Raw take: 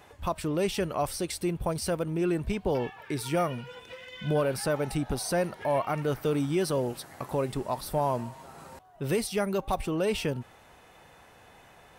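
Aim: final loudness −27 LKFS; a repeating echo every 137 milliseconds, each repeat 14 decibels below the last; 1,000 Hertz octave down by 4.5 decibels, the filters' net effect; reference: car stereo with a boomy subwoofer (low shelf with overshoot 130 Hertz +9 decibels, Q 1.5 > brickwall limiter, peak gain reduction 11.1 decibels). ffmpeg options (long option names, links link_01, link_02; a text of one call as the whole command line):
ffmpeg -i in.wav -af "lowshelf=frequency=130:width_type=q:width=1.5:gain=9,equalizer=frequency=1000:width_type=o:gain=-6,aecho=1:1:137|274:0.2|0.0399,volume=6.5dB,alimiter=limit=-17.5dB:level=0:latency=1" out.wav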